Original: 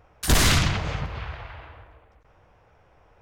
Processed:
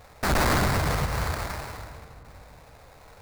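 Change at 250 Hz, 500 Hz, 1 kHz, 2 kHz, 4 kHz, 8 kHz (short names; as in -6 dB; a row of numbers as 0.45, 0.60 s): -0.5, +4.0, +4.0, -1.0, -7.0, -7.0 dB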